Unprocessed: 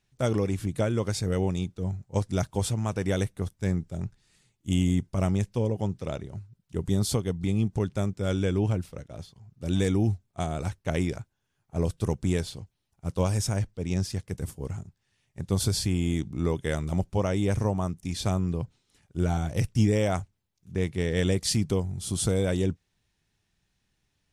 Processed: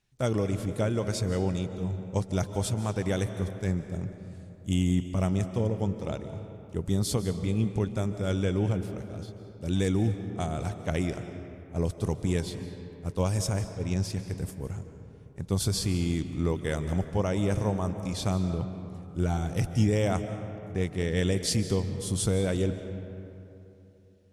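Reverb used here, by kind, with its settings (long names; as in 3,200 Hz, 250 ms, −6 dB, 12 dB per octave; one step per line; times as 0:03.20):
comb and all-pass reverb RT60 3 s, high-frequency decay 0.5×, pre-delay 110 ms, DRR 9 dB
level −1.5 dB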